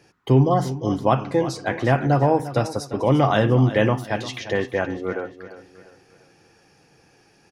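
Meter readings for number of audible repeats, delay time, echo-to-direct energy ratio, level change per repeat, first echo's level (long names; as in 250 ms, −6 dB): 3, 348 ms, −13.5 dB, −8.0 dB, −14.0 dB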